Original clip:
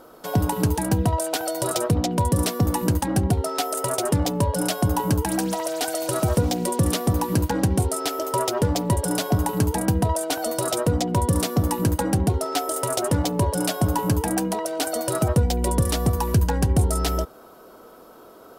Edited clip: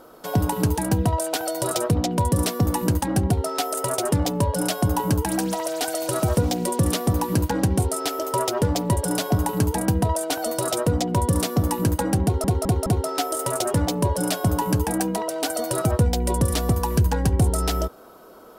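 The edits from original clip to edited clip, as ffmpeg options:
ffmpeg -i in.wav -filter_complex "[0:a]asplit=4[link_01][link_02][link_03][link_04];[link_01]atrim=end=12.442[link_05];[link_02]atrim=start=12.228:end=12.442[link_06];[link_03]atrim=start=12.228:end=12.442[link_07];[link_04]atrim=start=12.228[link_08];[link_05][link_06]acrossfade=duration=0.004:curve1=hsin:curve2=hsin[link_09];[link_09][link_07]acrossfade=duration=0.004:curve1=hsin:curve2=hsin[link_10];[link_10][link_08]acrossfade=duration=0.004:curve1=hsin:curve2=hsin" out.wav

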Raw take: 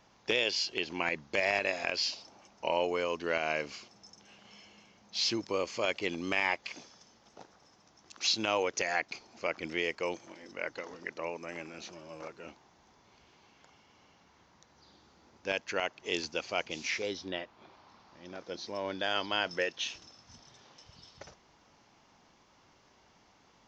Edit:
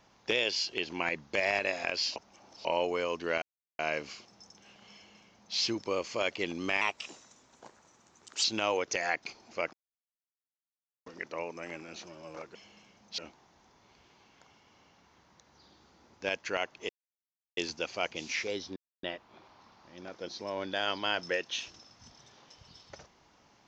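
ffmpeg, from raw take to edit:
ffmpeg -i in.wav -filter_complex "[0:a]asplit=12[link_01][link_02][link_03][link_04][link_05][link_06][link_07][link_08][link_09][link_10][link_11][link_12];[link_01]atrim=end=2.162[link_13];[link_02]atrim=start=2.158:end=2.652,asetpts=PTS-STARTPTS,areverse[link_14];[link_03]atrim=start=2.648:end=3.42,asetpts=PTS-STARTPTS,afade=type=out:start_time=0.768:duration=0.004:curve=hsin,apad=pad_dur=0.37[link_15];[link_04]atrim=start=3.42:end=6.444,asetpts=PTS-STARTPTS,afade=type=in:duration=0.004:curve=hsin[link_16];[link_05]atrim=start=6.44:end=8.3,asetpts=PTS-STARTPTS,asetrate=50274,aresample=44100[link_17];[link_06]atrim=start=8.296:end=9.59,asetpts=PTS-STARTPTS,afade=type=out:start_time=1.29:duration=0.004:curve=hsin[link_18];[link_07]atrim=start=9.59:end=10.92,asetpts=PTS-STARTPTS,volume=0[link_19];[link_08]atrim=start=10.92:end=12.412,asetpts=PTS-STARTPTS,afade=type=in:duration=0.004:curve=hsin[link_20];[link_09]atrim=start=4.558:end=5.192[link_21];[link_10]atrim=start=12.408:end=16.12,asetpts=PTS-STARTPTS,afade=type=out:start_time=3.708:duration=0.004:curve=hsin,apad=pad_dur=0.68[link_22];[link_11]atrim=start=16.12:end=17.31,asetpts=PTS-STARTPTS,afade=type=in:duration=0.004:curve=hsin,afade=type=out:start_time=1.186:duration=0.004:curve=hsin,apad=pad_dur=0.27[link_23];[link_12]atrim=start=17.31,asetpts=PTS-STARTPTS,afade=type=in:duration=0.004:curve=hsin[link_24];[link_13][link_14]acrossfade=duration=0.004:curve1=hsin:curve2=hsin[link_25];[link_15][link_16]concat=n=2:v=0:a=1[link_26];[link_25][link_26]acrossfade=duration=0.004:curve1=hsin:curve2=hsin[link_27];[link_27][link_17]acrossfade=duration=0.004:curve1=hsin:curve2=hsin[link_28];[link_18][link_19][link_20]concat=n=3:v=0:a=1[link_29];[link_28][link_29]acrossfade=duration=0.004:curve1=hsin:curve2=hsin[link_30];[link_30][link_21]acrossfade=duration=0.004:curve1=hsin:curve2=hsin[link_31];[link_22][link_23][link_24]concat=n=3:v=0:a=1[link_32];[link_31][link_32]acrossfade=duration=0.004:curve1=hsin:curve2=hsin" out.wav

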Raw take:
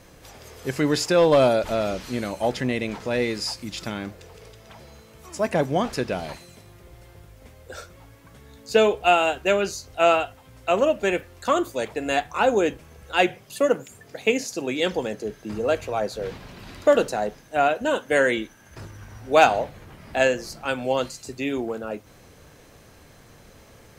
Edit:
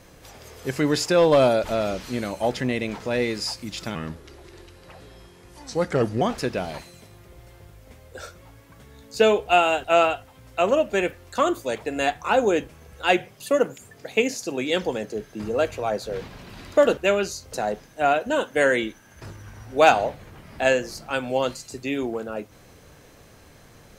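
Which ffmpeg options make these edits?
ffmpeg -i in.wav -filter_complex "[0:a]asplit=6[link_01][link_02][link_03][link_04][link_05][link_06];[link_01]atrim=end=3.954[link_07];[link_02]atrim=start=3.95:end=5.76,asetpts=PTS-STARTPTS,asetrate=35280,aresample=44100,atrim=end_sample=99776,asetpts=PTS-STARTPTS[link_08];[link_03]atrim=start=5.756:end=9.392[link_09];[link_04]atrim=start=9.938:end=17.072[link_10];[link_05]atrim=start=9.388:end=9.942[link_11];[link_06]atrim=start=17.068[link_12];[link_07][link_08]acrossfade=duration=0.004:curve1=hsin:curve2=hsin[link_13];[link_13][link_09]acrossfade=duration=0.004:curve1=hsin:curve2=hsin[link_14];[link_14][link_10]acrossfade=duration=0.004:curve1=hsin:curve2=hsin[link_15];[link_15][link_11]acrossfade=duration=0.004:curve1=hsin:curve2=hsin[link_16];[link_16][link_12]acrossfade=duration=0.004:curve1=hsin:curve2=hsin" out.wav

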